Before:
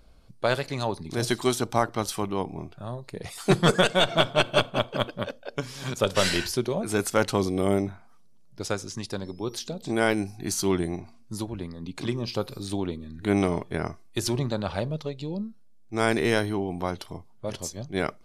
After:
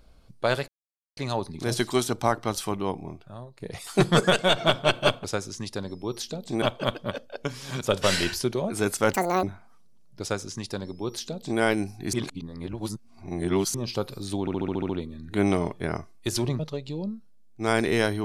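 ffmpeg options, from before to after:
-filter_complex "[0:a]asplit=17[a][b][c][d][e][f][g][h][i][j][k][l][m][n][o][p][q];[a]atrim=end=0.68,asetpts=PTS-STARTPTS,afade=t=out:st=0.676:d=0.004:c=hsin,apad=pad_dur=0.49[r];[b]atrim=start=0.68:end=3.11,asetpts=PTS-STARTPTS,afade=t=in:d=0.004:c=hsin,afade=t=out:st=1.71:d=0.72:silence=0.298538[s];[c]atrim=start=3.11:end=4.752,asetpts=PTS-STARTPTS,afade=t=in:d=0.004:c=hsin:silence=0.298538[t];[d]atrim=start=8.608:end=9.992[u];[e]atrim=start=4.748:end=7.264[v];[f]atrim=start=7.26:end=7.83,asetpts=PTS-STARTPTS,asetrate=82908,aresample=44100[w];[g]atrim=start=7.826:end=10.532[x];[h]atrim=start=10.528:end=12.142,asetpts=PTS-STARTPTS,areverse[y];[i]atrim=start=12.138:end=12.872[z];[j]atrim=start=12.798:end=12.872[aa];[k]atrim=start=12.798:end=12.872[ab];[l]atrim=start=12.798:end=12.872[ac];[m]atrim=start=12.798:end=12.872[ad];[n]atrim=start=12.798:end=12.872[ae];[o]atrim=start=12.798:end=12.872[af];[p]atrim=start=12.798:end=14.502[ag];[q]atrim=start=14.918[ah];[r][s][t]concat=n=3:v=0:a=1[ai];[ai][u]acrossfade=d=0.004:c1=hsin:c2=hsin[aj];[aj][v]acrossfade=d=0.004:c1=hsin:c2=hsin[ak];[ak][w]acrossfade=d=0.004:c1=hsin:c2=hsin[al];[al][x]acrossfade=d=0.004:c1=hsin:c2=hsin[am];[am][y]acrossfade=d=0.004:c1=hsin:c2=hsin[an];[an][z]acrossfade=d=0.004:c1=hsin:c2=hsin[ao];[ao][aa]acrossfade=d=0.004:c1=hsin:c2=hsin[ap];[ap][ab]acrossfade=d=0.004:c1=hsin:c2=hsin[aq];[aq][ac]acrossfade=d=0.004:c1=hsin:c2=hsin[ar];[ar][ad]acrossfade=d=0.004:c1=hsin:c2=hsin[as];[as][ae]acrossfade=d=0.004:c1=hsin:c2=hsin[at];[at][af]acrossfade=d=0.004:c1=hsin:c2=hsin[au];[au][ag]acrossfade=d=0.004:c1=hsin:c2=hsin[av];[av][ah]acrossfade=d=0.004:c1=hsin:c2=hsin"

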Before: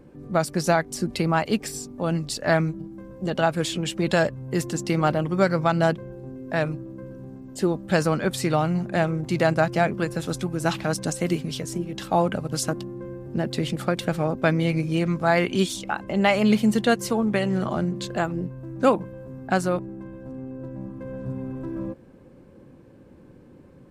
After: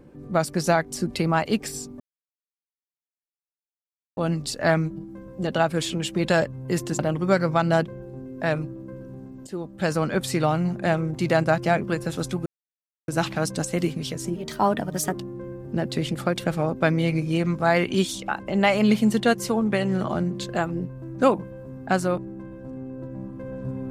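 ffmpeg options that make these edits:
-filter_complex "[0:a]asplit=7[a][b][c][d][e][f][g];[a]atrim=end=2,asetpts=PTS-STARTPTS,afade=t=out:st=1.996:d=0.004:c=hsin,apad=pad_dur=2.17[h];[b]atrim=start=2:end=4.822,asetpts=PTS-STARTPTS,afade=t=in:d=0.004:c=hsin[i];[c]atrim=start=5.088:end=7.57,asetpts=PTS-STARTPTS,afade=t=out:st=2.478:d=0.004:c=hsin:silence=0.223872[j];[d]atrim=start=7.57:end=10.56,asetpts=PTS-STARTPTS,afade=t=in:d=0.66:silence=0.223872,afade=t=out:st=2.986:d=0.004:c=hsin,apad=pad_dur=0.62[k];[e]atrim=start=10.56:end=11.844,asetpts=PTS-STARTPTS,afade=t=in:d=0.004:c=hsin[l];[f]atrim=start=11.84:end=12.75,asetpts=PTS-STARTPTS,asetrate=51597,aresample=44100[m];[g]atrim=start=12.746[n];[h][i]concat=n=2:v=0:a=1[o];[j][k][l]concat=n=3:v=0:a=1[p];[o][p]acrossfade=d=0.004:c1=hsin:c2=hsin[q];[q][m]acrossfade=d=0.004:c1=hsin:c2=hsin[r];[r][n]acrossfade=d=0.004:c1=hsin:c2=hsin"

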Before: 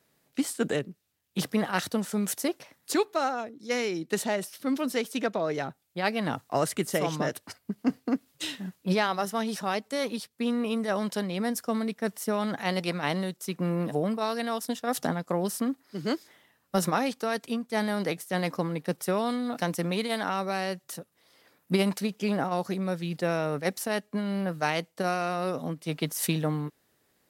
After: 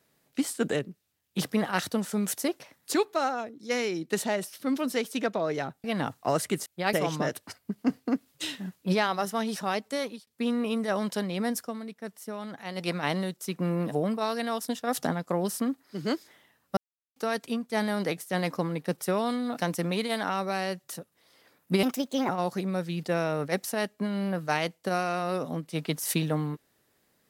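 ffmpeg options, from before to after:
-filter_complex "[0:a]asplit=11[a][b][c][d][e][f][g][h][i][j][k];[a]atrim=end=5.842[l];[b]atrim=start=6.108:end=6.932[m];[c]atrim=start=5.838:end=6.112[n];[d]atrim=start=6.928:end=10.27,asetpts=PTS-STARTPTS,afade=t=out:st=3.022:d=0.32[o];[e]atrim=start=10.27:end=11.73,asetpts=PTS-STARTPTS,afade=t=in:d=0.004:c=hsin,afade=t=out:st=1.33:d=0.13:silence=0.354813[p];[f]atrim=start=11.73:end=12.74,asetpts=PTS-STARTPTS,volume=-9dB[q];[g]atrim=start=12.74:end=16.77,asetpts=PTS-STARTPTS,afade=t=in:d=0.13:silence=0.354813,afade=t=out:st=4.026:d=0.004:c=hsin[r];[h]atrim=start=16.77:end=17.16,asetpts=PTS-STARTPTS,volume=0[s];[i]atrim=start=17.16:end=21.834,asetpts=PTS-STARTPTS,afade=t=in:d=0.004:c=hsin[t];[j]atrim=start=21.83:end=22.42,asetpts=PTS-STARTPTS,asetrate=56889,aresample=44100[u];[k]atrim=start=22.416[v];[l][m]acrossfade=d=0.004:c1=hsin:c2=hsin[w];[w][n]acrossfade=d=0.004:c1=hsin:c2=hsin[x];[o][p][q][r][s][t]concat=n=6:v=0:a=1[y];[x][y]acrossfade=d=0.004:c1=hsin:c2=hsin[z];[z][u]acrossfade=d=0.004:c1=hsin:c2=hsin[aa];[aa][v]acrossfade=d=0.004:c1=hsin:c2=hsin"

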